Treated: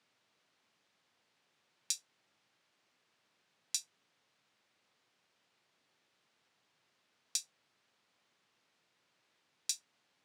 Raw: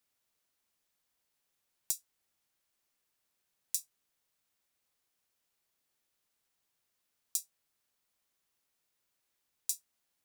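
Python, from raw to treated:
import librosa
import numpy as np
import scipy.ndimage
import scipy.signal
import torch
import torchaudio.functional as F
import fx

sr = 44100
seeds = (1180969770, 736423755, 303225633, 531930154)

p1 = scipy.signal.sosfilt(scipy.signal.butter(4, 110.0, 'highpass', fs=sr, output='sos'), x)
p2 = np.clip(p1, -10.0 ** (-19.0 / 20.0), 10.0 ** (-19.0 / 20.0))
p3 = p1 + (p2 * librosa.db_to_amplitude(-5.5))
p4 = scipy.signal.sosfilt(scipy.signal.butter(2, 4100.0, 'lowpass', fs=sr, output='sos'), p3)
y = p4 * librosa.db_to_amplitude(7.5)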